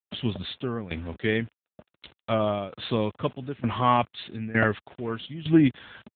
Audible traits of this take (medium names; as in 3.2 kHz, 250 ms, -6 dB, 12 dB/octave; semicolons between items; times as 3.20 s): a quantiser's noise floor 8-bit, dither none; tremolo saw down 1.1 Hz, depth 85%; AMR-NB